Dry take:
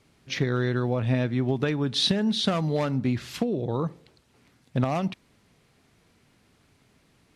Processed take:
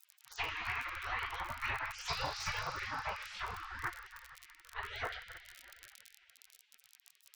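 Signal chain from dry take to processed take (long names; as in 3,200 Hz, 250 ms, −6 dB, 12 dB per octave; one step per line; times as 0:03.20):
pitch shifter swept by a sawtooth +9.5 semitones, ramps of 278 ms
low-pass filter 1,100 Hz 12 dB per octave
downward compressor 12 to 1, threshold −28 dBFS, peak gain reduction 9 dB
coupled-rooms reverb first 0.21 s, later 3.3 s, from −18 dB, DRR −5 dB
surface crackle 36 per second −46 dBFS
gate on every frequency bin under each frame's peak −30 dB weak
level +13 dB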